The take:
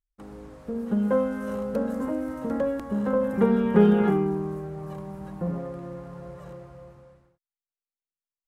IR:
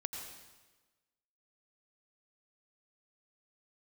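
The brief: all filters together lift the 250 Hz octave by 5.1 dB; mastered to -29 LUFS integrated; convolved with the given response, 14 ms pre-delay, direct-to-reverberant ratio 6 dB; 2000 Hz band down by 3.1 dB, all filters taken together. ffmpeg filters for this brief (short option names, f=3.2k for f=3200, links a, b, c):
-filter_complex "[0:a]equalizer=f=250:t=o:g=6.5,equalizer=f=2k:t=o:g=-4.5,asplit=2[a][b];[1:a]atrim=start_sample=2205,adelay=14[c];[b][c]afir=irnorm=-1:irlink=0,volume=-6dB[d];[a][d]amix=inputs=2:normalize=0,volume=-9dB"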